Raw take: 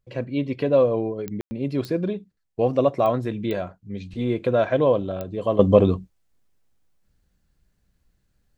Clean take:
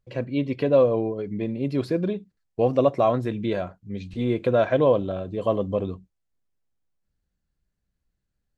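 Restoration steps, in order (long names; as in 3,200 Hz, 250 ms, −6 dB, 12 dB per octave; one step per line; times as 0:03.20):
click removal
ambience match 0:01.41–0:01.51
level 0 dB, from 0:05.59 −11 dB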